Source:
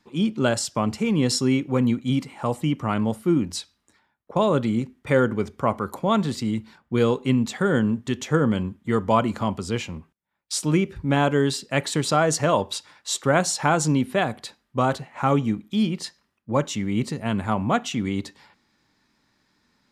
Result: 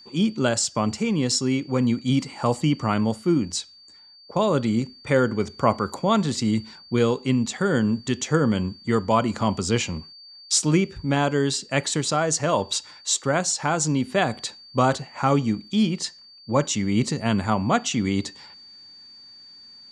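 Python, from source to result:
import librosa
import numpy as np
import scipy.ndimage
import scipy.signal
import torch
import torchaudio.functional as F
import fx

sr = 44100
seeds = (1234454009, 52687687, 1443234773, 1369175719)

y = fx.lowpass_res(x, sr, hz=7200.0, q=2.1)
y = y + 10.0 ** (-47.0 / 20.0) * np.sin(2.0 * np.pi * 4600.0 * np.arange(len(y)) / sr)
y = fx.rider(y, sr, range_db=4, speed_s=0.5)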